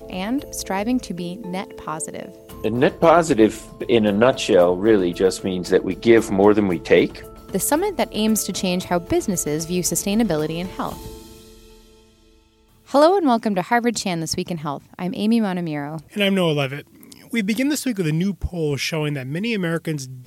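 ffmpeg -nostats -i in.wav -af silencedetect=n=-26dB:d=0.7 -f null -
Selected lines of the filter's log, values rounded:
silence_start: 11.08
silence_end: 12.94 | silence_duration: 1.86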